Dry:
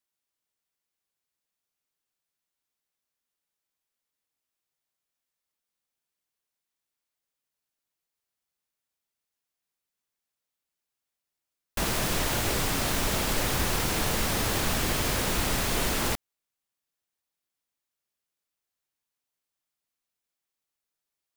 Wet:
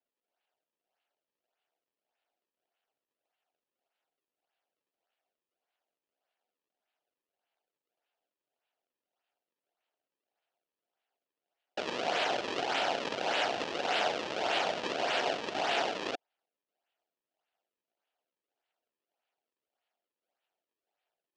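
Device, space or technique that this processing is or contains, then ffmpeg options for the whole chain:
circuit-bent sampling toy: -af "acrusher=samples=35:mix=1:aa=0.000001:lfo=1:lforange=56:lforate=1.7,highpass=560,equalizer=f=710:t=q:w=4:g=7,equalizer=f=1100:t=q:w=4:g=-7,equalizer=f=2000:t=q:w=4:g=-3,equalizer=f=2900:t=q:w=4:g=5,lowpass=f=5600:w=0.5412,lowpass=f=5600:w=1.3066"

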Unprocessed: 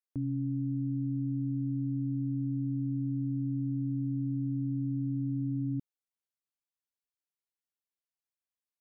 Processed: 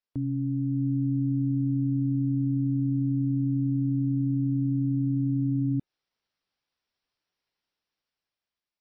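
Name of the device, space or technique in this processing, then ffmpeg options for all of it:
low-bitrate web radio: -af "dynaudnorm=f=350:g=7:m=2.82,alimiter=limit=0.0668:level=0:latency=1:release=145,volume=1.58" -ar 22050 -c:a libmp3lame -b:a 24k

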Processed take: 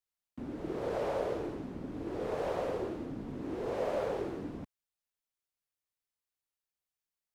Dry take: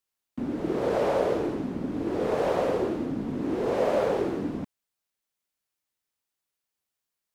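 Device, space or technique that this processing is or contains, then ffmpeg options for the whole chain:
low shelf boost with a cut just above: -af "lowshelf=f=97:g=7,equalizer=f=220:t=o:w=1:g=-4,volume=0.376"

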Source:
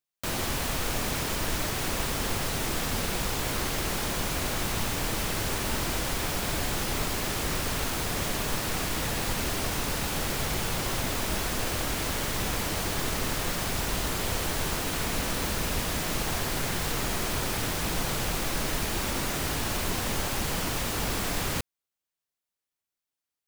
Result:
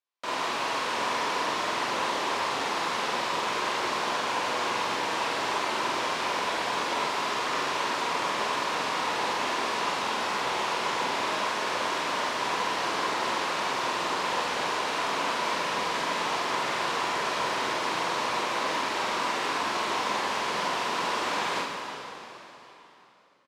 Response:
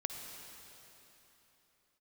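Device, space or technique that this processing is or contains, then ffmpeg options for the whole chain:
station announcement: -filter_complex "[0:a]highpass=390,lowpass=4400,equalizer=f=1000:t=o:w=0.3:g=9.5,aecho=1:1:46.65|145.8:0.891|0.316[s0];[1:a]atrim=start_sample=2205[s1];[s0][s1]afir=irnorm=-1:irlink=0"

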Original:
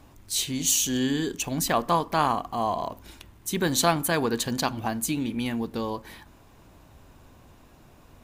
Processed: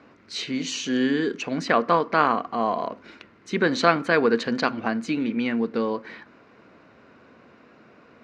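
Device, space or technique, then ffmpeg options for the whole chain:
kitchen radio: -af "highpass=220,equalizer=f=220:t=q:w=4:g=5,equalizer=f=470:t=q:w=4:g=6,equalizer=f=850:t=q:w=4:g=-6,equalizer=f=1400:t=q:w=4:g=7,equalizer=f=2100:t=q:w=4:g=5,equalizer=f=3400:t=q:w=4:g=-8,lowpass=f=4400:w=0.5412,lowpass=f=4400:w=1.3066,volume=1.41"

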